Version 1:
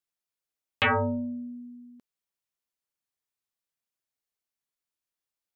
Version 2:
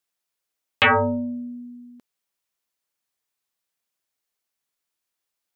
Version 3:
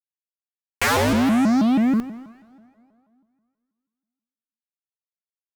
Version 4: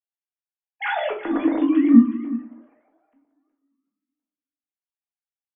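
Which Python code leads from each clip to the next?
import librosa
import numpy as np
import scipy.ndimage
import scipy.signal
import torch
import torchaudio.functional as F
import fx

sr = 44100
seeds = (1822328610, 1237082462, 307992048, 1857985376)

y1 = fx.low_shelf(x, sr, hz=230.0, db=-6.0)
y1 = y1 * 10.0 ** (7.5 / 20.0)
y2 = fx.fuzz(y1, sr, gain_db=48.0, gate_db=-56.0)
y2 = fx.rev_plate(y2, sr, seeds[0], rt60_s=2.2, hf_ratio=0.8, predelay_ms=0, drr_db=13.0)
y2 = fx.vibrato_shape(y2, sr, shape='saw_up', rate_hz=6.2, depth_cents=250.0)
y2 = y2 * 10.0 ** (-5.5 / 20.0)
y3 = fx.sine_speech(y2, sr)
y3 = y3 + 10.0 ** (-15.5 / 20.0) * np.pad(y3, (int(368 * sr / 1000.0), 0))[:len(y3)]
y3 = fx.room_shoebox(y3, sr, seeds[1], volume_m3=280.0, walls='furnished', distance_m=1.8)
y3 = y3 * 10.0 ** (-6.0 / 20.0)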